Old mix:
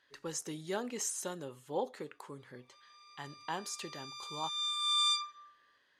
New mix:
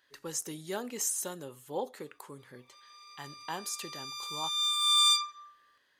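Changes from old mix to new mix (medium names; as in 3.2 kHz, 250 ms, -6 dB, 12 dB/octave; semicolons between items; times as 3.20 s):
background +4.5 dB; master: remove distance through air 52 m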